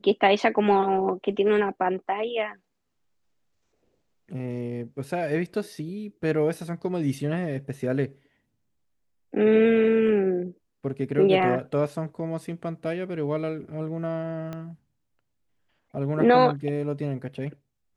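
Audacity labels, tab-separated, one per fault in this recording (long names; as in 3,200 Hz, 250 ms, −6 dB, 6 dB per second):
14.530000	14.530000	click −22 dBFS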